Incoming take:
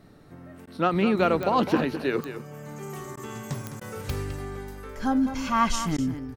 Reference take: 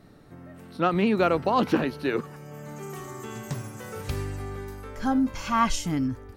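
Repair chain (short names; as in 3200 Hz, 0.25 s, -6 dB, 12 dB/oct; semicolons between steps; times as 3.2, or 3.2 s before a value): de-click; interpolate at 0.66/3.16/3.8/5.97, 11 ms; inverse comb 0.209 s -10.5 dB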